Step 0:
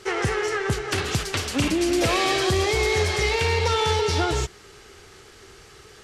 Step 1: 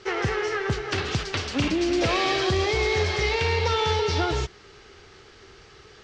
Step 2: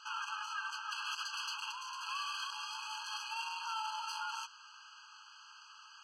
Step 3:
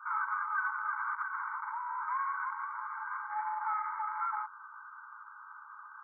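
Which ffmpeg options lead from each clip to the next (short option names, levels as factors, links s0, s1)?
-af "lowpass=f=5800:w=0.5412,lowpass=f=5800:w=1.3066,volume=0.841"
-filter_complex "[0:a]acrossover=split=330[s0][s1];[s1]alimiter=limit=0.0794:level=0:latency=1:release=58[s2];[s0][s2]amix=inputs=2:normalize=0,asoftclip=type=tanh:threshold=0.0398,afftfilt=real='re*eq(mod(floor(b*sr/1024/830),2),1)':imag='im*eq(mod(floor(b*sr/1024/830),2),1)':win_size=1024:overlap=0.75,volume=0.891"
-af "afreqshift=-58,aeval=exprs='0.0501*(cos(1*acos(clip(val(0)/0.0501,-1,1)))-cos(1*PI/2))+0.00355*(cos(4*acos(clip(val(0)/0.0501,-1,1)))-cos(4*PI/2))+0.00355*(cos(5*acos(clip(val(0)/0.0501,-1,1)))-cos(5*PI/2))':c=same,afftfilt=real='re*between(b*sr/4096,830,2300)':imag='im*between(b*sr/4096,830,2300)':win_size=4096:overlap=0.75,volume=2.11"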